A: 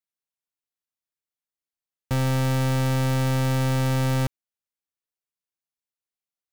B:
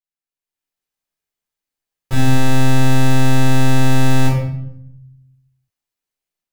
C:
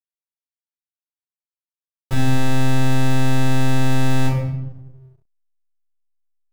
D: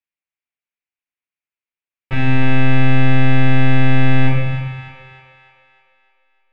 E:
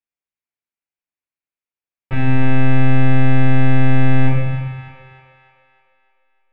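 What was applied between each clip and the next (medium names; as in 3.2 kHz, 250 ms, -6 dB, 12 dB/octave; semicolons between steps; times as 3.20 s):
level rider gain up to 11.5 dB; simulated room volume 190 m³, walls mixed, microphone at 4 m; trim -15.5 dB
in parallel at -1 dB: compression, threshold -17 dBFS, peak gain reduction 10.5 dB; on the sum: hysteresis with a dead band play -33 dBFS; trim -6 dB
resonant low-pass 2.4 kHz, resonance Q 3.6; on a send: two-band feedback delay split 570 Hz, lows 114 ms, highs 303 ms, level -8.5 dB
treble shelf 2.8 kHz -11.5 dB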